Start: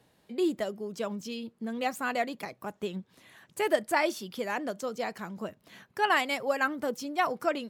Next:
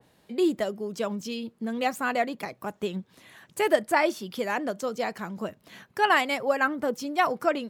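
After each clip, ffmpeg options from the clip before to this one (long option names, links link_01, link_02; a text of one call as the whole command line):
ffmpeg -i in.wav -af "adynamicequalizer=threshold=0.00708:dfrequency=2500:dqfactor=0.7:tfrequency=2500:tqfactor=0.7:attack=5:release=100:ratio=0.375:range=3.5:mode=cutabove:tftype=highshelf,volume=4dB" out.wav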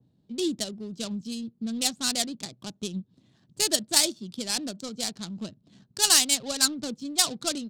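ffmpeg -i in.wav -af "adynamicsmooth=sensitivity=3.5:basefreq=660,equalizer=frequency=125:width_type=o:width=1:gain=7,equalizer=frequency=250:width_type=o:width=1:gain=5,equalizer=frequency=500:width_type=o:width=1:gain=-7,equalizer=frequency=1000:width_type=o:width=1:gain=-7,equalizer=frequency=2000:width_type=o:width=1:gain=-10,equalizer=frequency=4000:width_type=o:width=1:gain=11,equalizer=frequency=8000:width_type=o:width=1:gain=11,crystalizer=i=4.5:c=0,volume=-4.5dB" out.wav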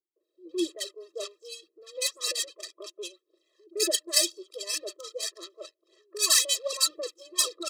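ffmpeg -i in.wav -filter_complex "[0:a]aphaser=in_gain=1:out_gain=1:delay=2:decay=0.52:speed=1.9:type=sinusoidal,acrossover=split=190|1100[link_01][link_02][link_03];[link_02]adelay=160[link_04];[link_03]adelay=200[link_05];[link_01][link_04][link_05]amix=inputs=3:normalize=0,afftfilt=real='re*eq(mod(floor(b*sr/1024/340),2),1)':imag='im*eq(mod(floor(b*sr/1024/340),2),1)':win_size=1024:overlap=0.75" out.wav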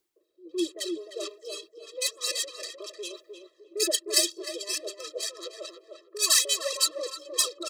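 ffmpeg -i in.wav -filter_complex "[0:a]areverse,acompressor=mode=upward:threshold=-34dB:ratio=2.5,areverse,asplit=2[link_01][link_02];[link_02]adelay=305,lowpass=frequency=1400:poles=1,volume=-4.5dB,asplit=2[link_03][link_04];[link_04]adelay=305,lowpass=frequency=1400:poles=1,volume=0.28,asplit=2[link_05][link_06];[link_06]adelay=305,lowpass=frequency=1400:poles=1,volume=0.28,asplit=2[link_07][link_08];[link_08]adelay=305,lowpass=frequency=1400:poles=1,volume=0.28[link_09];[link_01][link_03][link_05][link_07][link_09]amix=inputs=5:normalize=0" out.wav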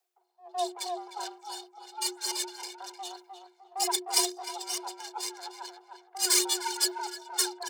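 ffmpeg -i in.wav -af "aeval=exprs='if(lt(val(0),0),0.447*val(0),val(0))':channel_layout=same,afreqshift=360" out.wav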